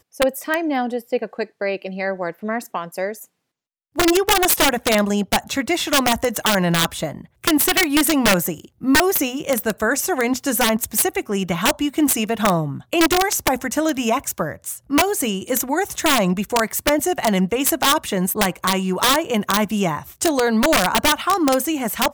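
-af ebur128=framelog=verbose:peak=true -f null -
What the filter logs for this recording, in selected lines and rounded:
Integrated loudness:
  I:         -19.1 LUFS
  Threshold: -29.2 LUFS
Loudness range:
  LRA:         2.6 LU
  Threshold: -39.2 LUFS
  LRA low:   -20.5 LUFS
  LRA high:  -17.9 LUFS
True peak:
  Peak:       -4.0 dBFS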